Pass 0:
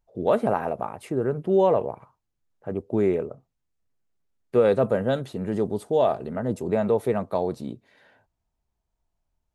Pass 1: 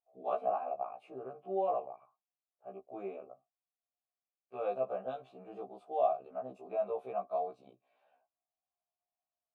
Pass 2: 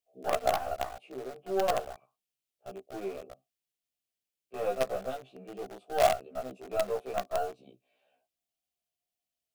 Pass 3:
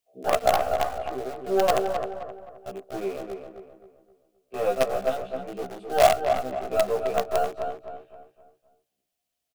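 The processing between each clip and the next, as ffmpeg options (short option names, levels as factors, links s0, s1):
-filter_complex "[0:a]asplit=3[s0][s1][s2];[s0]bandpass=f=730:t=q:w=8,volume=1[s3];[s1]bandpass=f=1090:t=q:w=8,volume=0.501[s4];[s2]bandpass=f=2440:t=q:w=8,volume=0.355[s5];[s3][s4][s5]amix=inputs=3:normalize=0,afftfilt=real='re*1.73*eq(mod(b,3),0)':imag='im*1.73*eq(mod(b,3),0)':win_size=2048:overlap=0.75"
-filter_complex "[0:a]equalizer=f=3000:t=o:w=0.31:g=4,acrossover=split=200|610|1700[s0][s1][s2][s3];[s2]acrusher=bits=6:dc=4:mix=0:aa=0.000001[s4];[s0][s1][s4][s3]amix=inputs=4:normalize=0,volume=1.88"
-filter_complex "[0:a]asplit=2[s0][s1];[s1]adelay=262,lowpass=f=2100:p=1,volume=0.501,asplit=2[s2][s3];[s3]adelay=262,lowpass=f=2100:p=1,volume=0.4,asplit=2[s4][s5];[s5]adelay=262,lowpass=f=2100:p=1,volume=0.4,asplit=2[s6][s7];[s7]adelay=262,lowpass=f=2100:p=1,volume=0.4,asplit=2[s8][s9];[s9]adelay=262,lowpass=f=2100:p=1,volume=0.4[s10];[s0][s2][s4][s6][s8][s10]amix=inputs=6:normalize=0,volume=2.11"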